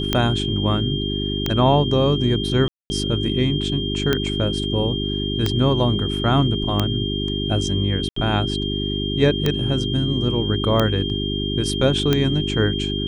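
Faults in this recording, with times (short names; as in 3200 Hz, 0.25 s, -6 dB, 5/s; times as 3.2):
hum 50 Hz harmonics 8 -25 dBFS
tick 45 rpm -5 dBFS
tone 3200 Hz -27 dBFS
2.68–2.9 gap 0.22 s
8.09–8.16 gap 74 ms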